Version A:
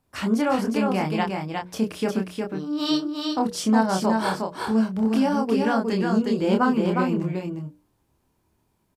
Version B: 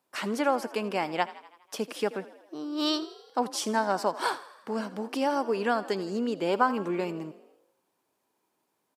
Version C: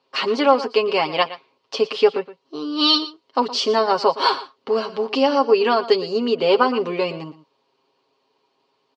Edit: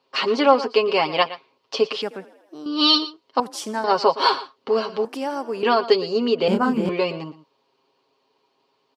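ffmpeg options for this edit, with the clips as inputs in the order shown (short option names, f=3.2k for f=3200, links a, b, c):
-filter_complex "[1:a]asplit=3[a][b][c];[2:a]asplit=5[d][e][f][g][h];[d]atrim=end=2.022[i];[a]atrim=start=2.018:end=2.662[j];[e]atrim=start=2.658:end=3.402[k];[b]atrim=start=3.398:end=3.842[l];[f]atrim=start=3.838:end=5.052[m];[c]atrim=start=5.048:end=5.632[n];[g]atrim=start=5.628:end=6.482[o];[0:a]atrim=start=6.478:end=6.892[p];[h]atrim=start=6.888[q];[i][j]acrossfade=d=0.004:c1=hsin:c2=hsin[r];[r][k]acrossfade=d=0.004:c1=hsin:c2=hsin[s];[s][l]acrossfade=d=0.004:c1=hsin:c2=hsin[t];[t][m]acrossfade=d=0.004:c1=hsin:c2=hsin[u];[u][n]acrossfade=d=0.004:c1=hsin:c2=hsin[v];[v][o]acrossfade=d=0.004:c1=hsin:c2=hsin[w];[w][p]acrossfade=d=0.004:c1=hsin:c2=hsin[x];[x][q]acrossfade=d=0.004:c1=hsin:c2=hsin"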